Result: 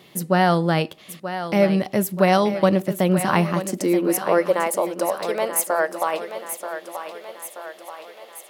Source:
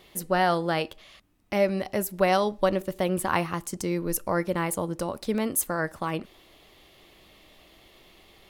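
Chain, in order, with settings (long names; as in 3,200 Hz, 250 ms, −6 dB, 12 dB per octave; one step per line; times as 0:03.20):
high-pass filter sweep 150 Hz → 610 Hz, 0:03.29–0:04.72
feedback echo with a high-pass in the loop 931 ms, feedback 58%, high-pass 260 Hz, level −9.5 dB
level +4 dB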